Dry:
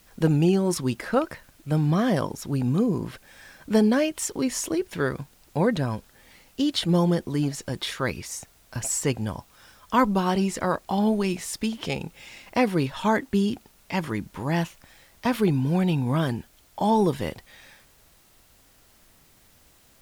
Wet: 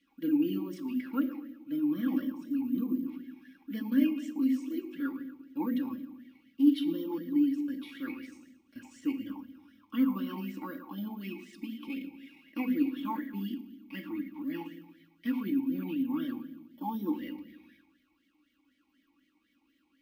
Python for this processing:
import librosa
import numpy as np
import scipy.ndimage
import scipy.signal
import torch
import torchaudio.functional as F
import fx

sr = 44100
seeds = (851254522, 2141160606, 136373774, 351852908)

y = x + 0.93 * np.pad(x, (int(3.6 * sr / 1000.0), 0))[:len(x)]
y = fx.echo_feedback(y, sr, ms=113, feedback_pct=44, wet_db=-15.5)
y = fx.room_shoebox(y, sr, seeds[0], volume_m3=290.0, walls='mixed', distance_m=0.59)
y = (np.kron(scipy.signal.resample_poly(y, 1, 3), np.eye(3)[0]) * 3)[:len(y)]
y = fx.vowel_sweep(y, sr, vowels='i-u', hz=4.0)
y = F.gain(torch.from_numpy(y), -3.5).numpy()